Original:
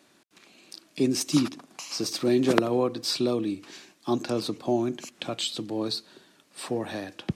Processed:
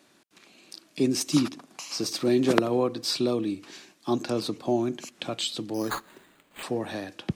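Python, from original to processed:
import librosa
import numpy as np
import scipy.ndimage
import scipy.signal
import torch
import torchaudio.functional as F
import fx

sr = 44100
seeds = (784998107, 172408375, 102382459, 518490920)

y = fx.resample_bad(x, sr, factor=8, down='none', up='hold', at=(5.74, 6.63))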